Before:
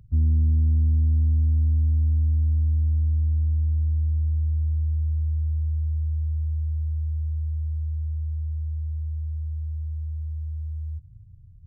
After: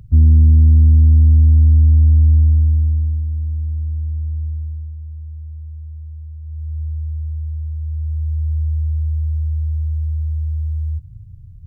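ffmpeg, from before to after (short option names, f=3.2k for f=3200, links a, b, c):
-af "volume=27dB,afade=t=out:st=2.35:d=0.9:silence=0.334965,afade=t=out:st=4.45:d=0.5:silence=0.421697,afade=t=in:st=6.42:d=0.4:silence=0.334965,afade=t=in:st=7.78:d=0.81:silence=0.446684"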